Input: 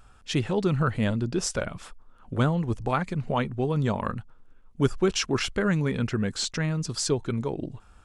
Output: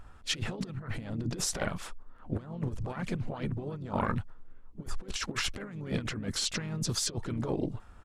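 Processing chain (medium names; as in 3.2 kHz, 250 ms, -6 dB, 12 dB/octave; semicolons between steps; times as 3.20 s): compressor with a negative ratio -30 dBFS, ratio -0.5; harmony voices -5 st -11 dB, +4 st -13 dB, +5 st -10 dB; tape noise reduction on one side only decoder only; trim -3.5 dB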